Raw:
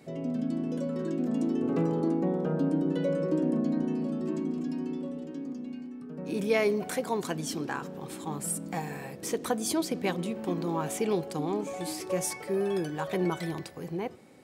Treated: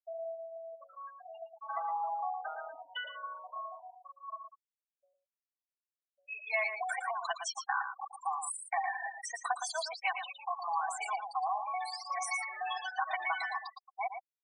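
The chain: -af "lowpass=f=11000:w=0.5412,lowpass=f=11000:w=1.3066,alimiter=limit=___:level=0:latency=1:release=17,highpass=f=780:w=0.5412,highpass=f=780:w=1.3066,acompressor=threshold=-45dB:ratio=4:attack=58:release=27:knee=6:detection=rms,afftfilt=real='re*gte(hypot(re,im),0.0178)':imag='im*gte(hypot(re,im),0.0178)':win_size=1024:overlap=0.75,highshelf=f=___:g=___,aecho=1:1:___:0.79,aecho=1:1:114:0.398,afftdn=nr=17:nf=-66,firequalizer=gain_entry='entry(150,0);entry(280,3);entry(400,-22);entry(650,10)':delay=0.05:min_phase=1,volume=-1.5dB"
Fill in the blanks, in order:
-15.5dB, 7300, -10, 2.7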